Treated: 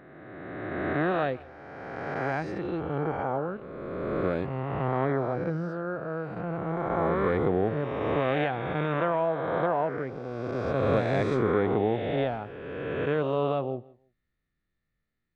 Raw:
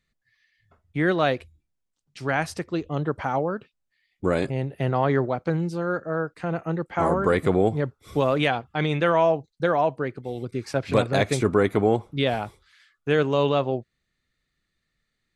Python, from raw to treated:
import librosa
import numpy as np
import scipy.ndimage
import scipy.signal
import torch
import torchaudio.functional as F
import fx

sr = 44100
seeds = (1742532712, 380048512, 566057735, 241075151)

y = fx.spec_swells(x, sr, rise_s=2.26)
y = fx.spacing_loss(y, sr, db_at_10k=32)
y = fx.echo_feedback(y, sr, ms=163, feedback_pct=20, wet_db=-22.0)
y = y * 10.0 ** (-6.0 / 20.0)